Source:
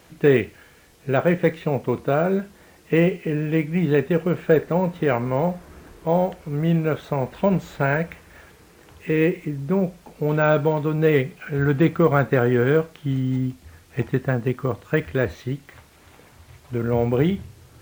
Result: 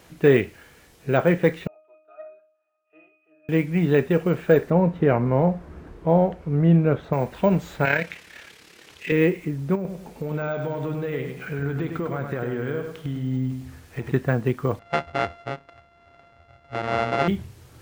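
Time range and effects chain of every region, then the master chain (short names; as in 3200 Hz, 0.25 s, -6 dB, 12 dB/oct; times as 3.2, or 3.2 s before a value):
1.67–3.49 HPF 620 Hz 24 dB/oct + octave resonator D#, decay 0.54 s + core saturation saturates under 440 Hz
4.7–7.13 LPF 1700 Hz 6 dB/oct + low shelf 350 Hz +4.5 dB
7.85–9.12 weighting filter D + AM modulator 35 Hz, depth 40%
9.75–14.12 compressor 5:1, threshold -25 dBFS + feedback echo 0.1 s, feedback 35%, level -6 dB
14.79–17.28 sample sorter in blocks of 64 samples + LPF 2200 Hz + low shelf 410 Hz -8.5 dB
whole clip: dry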